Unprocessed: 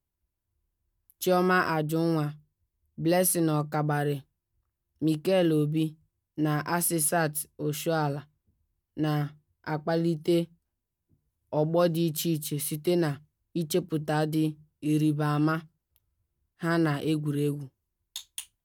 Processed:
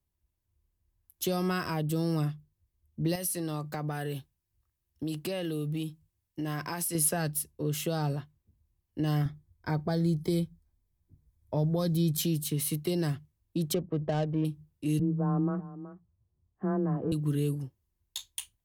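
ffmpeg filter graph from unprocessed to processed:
ffmpeg -i in.wav -filter_complex "[0:a]asettb=1/sr,asplit=3[link_01][link_02][link_03];[link_01]atrim=end=3.154[link_04];[link_02]atrim=start=3.15:end=6.95,asetpts=PTS-STARTPTS,afade=type=in:duration=0.004:curve=qsin,afade=type=out:start_time=3.796:duration=0.004:curve=qsin,tiltshelf=frequency=1400:gain=-3.5,acompressor=threshold=-31dB:ratio=3:attack=3.2:release=140:knee=1:detection=peak[link_05];[link_03]atrim=start=6.946[link_06];[link_04][link_05]acrossfade=duration=0.004:curve1=hsin:curve2=qsin[link_07];[link_07][link_06]acrossfade=duration=0.004:curve1=qsin:curve2=hsin,asettb=1/sr,asplit=3[link_08][link_09][link_10];[link_08]atrim=end=9.254[link_11];[link_09]atrim=start=9.25:end=12.21,asetpts=PTS-STARTPTS,afade=type=in:duration=0.004:curve=qsin,afade=type=out:start_time=2.956:duration=0.004:curve=qsin,asuperstop=centerf=2800:order=12:qfactor=6.2,lowshelf=frequency=95:gain=11.5[link_12];[link_10]atrim=start=12.206[link_13];[link_11][link_12]acrossfade=duration=0.004:curve1=hsin:curve2=qsin[link_14];[link_14][link_13]acrossfade=duration=0.004:curve1=qsin:curve2=hsin,asettb=1/sr,asplit=3[link_15][link_16][link_17];[link_15]atrim=end=13.744[link_18];[link_16]atrim=start=13.74:end=14.45,asetpts=PTS-STARTPTS,afade=type=in:duration=0.004:curve=qsin,afade=type=out:start_time=0.706:duration=0.004:curve=qsin,lowpass=frequency=2800:width=0.5412,lowpass=frequency=2800:width=1.3066,equalizer=frequency=610:width_type=o:width=0.89:gain=10,adynamicsmooth=sensitivity=2.5:basefreq=910[link_19];[link_17]atrim=start=14.446[link_20];[link_18][link_19]acrossfade=duration=0.004:curve1=hsin:curve2=qsin[link_21];[link_21][link_20]acrossfade=duration=0.004:curve1=qsin:curve2=hsin,asettb=1/sr,asplit=3[link_22][link_23][link_24];[link_22]atrim=end=14.994[link_25];[link_23]atrim=start=14.99:end=17.12,asetpts=PTS-STARTPTS,afade=type=in:duration=0.004:curve=qsin,afade=type=out:start_time=2.126:duration=0.004:curve=qsin,lowpass=frequency=1100:width=0.5412,lowpass=frequency=1100:width=1.3066,afreqshift=16,aecho=1:1:373:0.112,atrim=end_sample=93933[link_26];[link_24]atrim=start=17.116[link_27];[link_25][link_26]acrossfade=duration=0.004:curve1=hsin:curve2=qsin[link_28];[link_28][link_27]acrossfade=duration=0.004:curve1=qsin:curve2=hsin,acrossover=split=170|3000[link_29][link_30][link_31];[link_30]acompressor=threshold=-30dB:ratio=6[link_32];[link_29][link_32][link_31]amix=inputs=3:normalize=0,equalizer=frequency=70:width=0.61:gain=4.5,bandreject=frequency=1400:width=11" out.wav

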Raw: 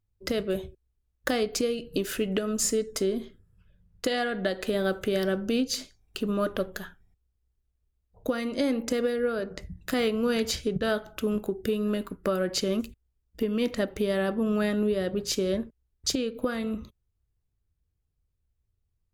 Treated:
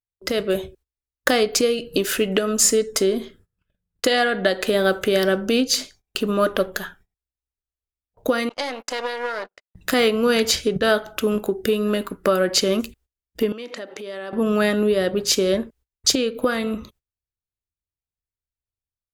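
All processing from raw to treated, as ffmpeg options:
ffmpeg -i in.wav -filter_complex "[0:a]asettb=1/sr,asplit=3[link_01][link_02][link_03];[link_01]atrim=end=8.494[link_04];[link_02]atrim=start=8.49:end=9.75,asetpts=PTS-STARTPTS,afade=type=in:duration=0.004:curve=qsin,afade=type=out:start_time=1.256:duration=0.004:curve=qsin,aeval=exprs='if(lt(val(0),0),0.251*val(0),val(0))':channel_layout=same,acrossover=split=580 7600:gain=0.2 1 0.224[link_05][link_06][link_07];[link_05][link_06][link_07]amix=inputs=3:normalize=0,agate=range=-43dB:threshold=-45dB:ratio=16:release=100:detection=peak[link_08];[link_03]atrim=start=9.746[link_09];[link_04][link_08]acrossfade=duration=0.004:curve1=hsin:curve2=qsin[link_10];[link_10][link_09]acrossfade=duration=0.004:curve1=qsin:curve2=hsin,asettb=1/sr,asplit=3[link_11][link_12][link_13];[link_11]atrim=end=13.524[link_14];[link_12]atrim=start=13.52:end=14.33,asetpts=PTS-STARTPTS,afade=type=in:duration=0.004:curve=qsin,afade=type=out:start_time=0.806:duration=0.004:curve=qsin,acompressor=threshold=-36dB:ratio=10:attack=3.2:release=140:knee=1:detection=peak,highpass=270,lowpass=7800[link_15];[link_13]atrim=start=14.326[link_16];[link_14][link_15]acrossfade=duration=0.004:curve1=hsin:curve2=qsin[link_17];[link_17][link_16]acrossfade=duration=0.004:curve1=qsin:curve2=hsin,agate=range=-21dB:threshold=-55dB:ratio=16:detection=peak,lowshelf=frequency=250:gain=-10,dynaudnorm=framelen=240:gausssize=3:maxgain=5dB,volume=5.5dB" out.wav

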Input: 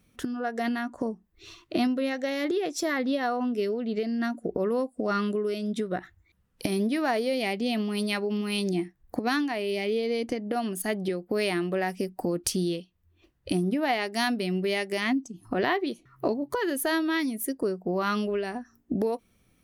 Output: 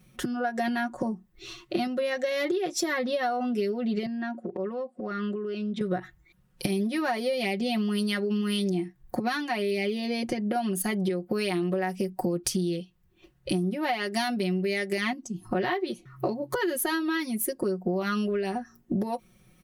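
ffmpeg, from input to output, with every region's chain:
ffmpeg -i in.wav -filter_complex "[0:a]asettb=1/sr,asplit=3[link_01][link_02][link_03];[link_01]atrim=end=4.064[link_04];[link_02]atrim=start=4.06:end=5.81,asetpts=PTS-STARTPTS,afade=type=in:duration=0.004:curve=qsin,afade=type=out:start_time=1.746:duration=0.004:curve=qsin,highpass=180,lowpass=3200,acompressor=threshold=-35dB:ratio=4:attack=3.2:release=140:knee=1:detection=peak,asoftclip=type=hard:threshold=-27dB[link_05];[link_03]atrim=start=5.806[link_06];[link_04][link_05]acrossfade=duration=0.004:curve1=hsin:curve2=qsin[link_07];[link_07][link_06]acrossfade=duration=0.004:curve1=qsin:curve2=hsin,equalizer=frequency=130:width_type=o:width=0.41:gain=8,aecho=1:1:5.5:0.88,acompressor=threshold=-27dB:ratio=6,volume=2.5dB" out.wav

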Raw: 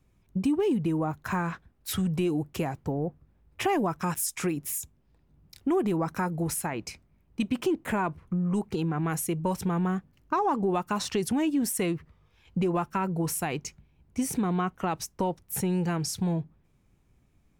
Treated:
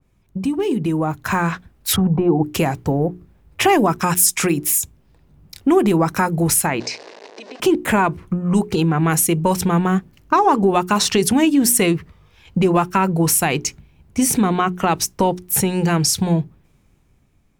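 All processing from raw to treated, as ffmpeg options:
ffmpeg -i in.wav -filter_complex "[0:a]asettb=1/sr,asplit=3[link_01][link_02][link_03];[link_01]atrim=end=1.964[link_04];[link_02]atrim=start=1.96:end=2.44,asetpts=PTS-STARTPTS,afade=type=in:duration=0.004:curve=qsin,afade=type=out:start_time=0.476:duration=0.004:curve=qsin,lowpass=frequency=840:width_type=q:width=2.8,bandreject=frequency=600:width=5.6[link_05];[link_03]atrim=start=2.436[link_06];[link_04][link_05]acrossfade=duration=0.004:curve1=hsin:curve2=qsin[link_07];[link_07][link_06]acrossfade=duration=0.004:curve1=qsin:curve2=hsin,asettb=1/sr,asplit=3[link_08][link_09][link_10];[link_08]atrim=end=6.804[link_11];[link_09]atrim=start=6.8:end=7.6,asetpts=PTS-STARTPTS,afade=type=in:duration=0.004:curve=qsin,afade=type=out:start_time=0.796:duration=0.004:curve=qsin,aeval=exprs='val(0)+0.5*0.0141*sgn(val(0))':channel_layout=same,acompressor=threshold=-31dB:ratio=12:attack=3.2:release=140:knee=1:detection=peak,highpass=frequency=410:width=0.5412,highpass=frequency=410:width=1.3066,equalizer=frequency=430:width_type=q:width=4:gain=6,equalizer=frequency=1300:width_type=q:width=4:gain=-10,equalizer=frequency=2300:width_type=q:width=4:gain=-5,equalizer=frequency=3200:width_type=q:width=4:gain=-7,lowpass=frequency=5700:width=0.5412,lowpass=frequency=5700:width=1.3066[link_12];[link_10]atrim=start=7.596[link_13];[link_11][link_12]acrossfade=duration=0.004:curve1=hsin:curve2=qsin[link_14];[link_14][link_13]acrossfade=duration=0.004:curve1=qsin:curve2=hsin,bandreject=frequency=60:width_type=h:width=6,bandreject=frequency=120:width_type=h:width=6,bandreject=frequency=180:width_type=h:width=6,bandreject=frequency=240:width_type=h:width=6,bandreject=frequency=300:width_type=h:width=6,bandreject=frequency=360:width_type=h:width=6,bandreject=frequency=420:width_type=h:width=6,dynaudnorm=framelen=250:gausssize=9:maxgain=6.5dB,adynamicequalizer=threshold=0.0141:dfrequency=2000:dqfactor=0.7:tfrequency=2000:tqfactor=0.7:attack=5:release=100:ratio=0.375:range=2:mode=boostabove:tftype=highshelf,volume=5dB" out.wav

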